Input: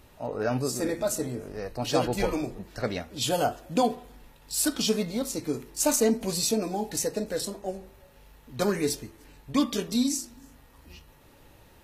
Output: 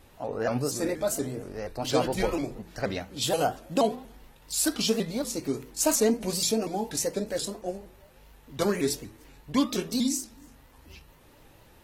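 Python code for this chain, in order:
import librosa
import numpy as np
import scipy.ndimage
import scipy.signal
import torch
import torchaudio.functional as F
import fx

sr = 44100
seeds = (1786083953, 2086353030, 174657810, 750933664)

y = fx.hum_notches(x, sr, base_hz=60, count=4)
y = fx.vibrato_shape(y, sr, shape='saw_up', rate_hz=4.2, depth_cents=160.0)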